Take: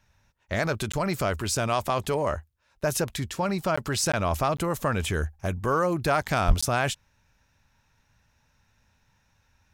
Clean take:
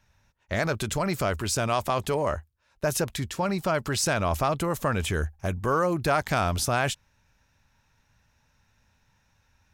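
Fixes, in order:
clipped peaks rebuilt −12.5 dBFS
high-pass at the plosives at 0:06.47
repair the gap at 0:00.92/0:03.76/0:04.12/0:04.57/0:06.61, 15 ms

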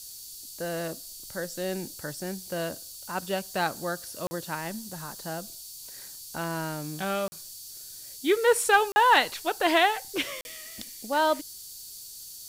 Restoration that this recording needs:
clipped peaks rebuilt −9.5 dBFS
notch filter 4,500 Hz, Q 30
repair the gap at 0:04.27/0:07.28/0:08.92/0:10.41, 40 ms
noise reduction from a noise print 28 dB

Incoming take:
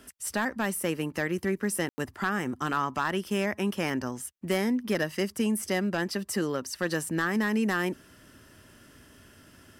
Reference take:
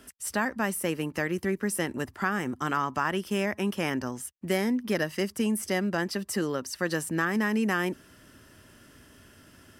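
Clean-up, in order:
clipped peaks rebuilt −18.5 dBFS
ambience match 0:01.89–0:01.98

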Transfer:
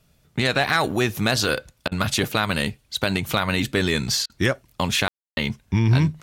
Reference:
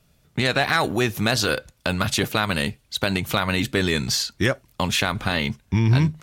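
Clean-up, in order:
ambience match 0:05.08–0:05.37
repair the gap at 0:01.88/0:04.26, 36 ms

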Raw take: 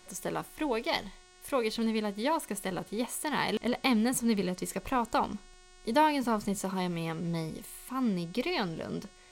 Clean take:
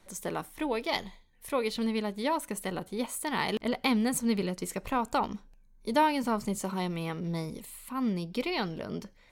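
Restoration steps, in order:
hum removal 364.7 Hz, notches 25

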